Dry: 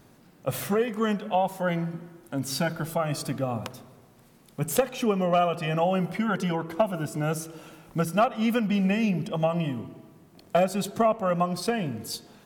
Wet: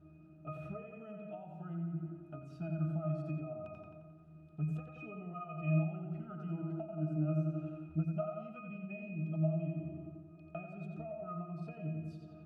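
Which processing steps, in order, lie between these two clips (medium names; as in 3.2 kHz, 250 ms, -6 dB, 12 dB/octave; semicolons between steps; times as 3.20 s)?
on a send: filtered feedback delay 88 ms, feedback 57%, low-pass 4.9 kHz, level -5 dB; on the sum: compression 6:1, threshold -33 dBFS, peak gain reduction 15.5 dB; pitch-class resonator D#, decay 0.37 s; trim +10.5 dB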